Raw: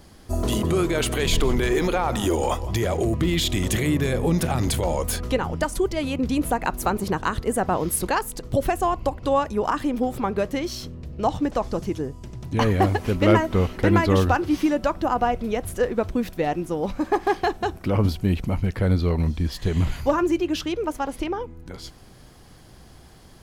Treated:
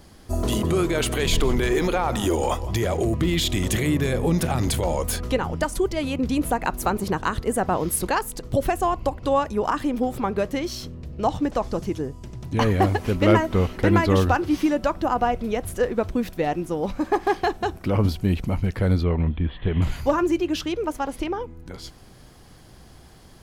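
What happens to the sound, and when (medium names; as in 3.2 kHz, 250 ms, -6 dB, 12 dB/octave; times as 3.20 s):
19.03–19.82 s: steep low-pass 3.5 kHz 72 dB/octave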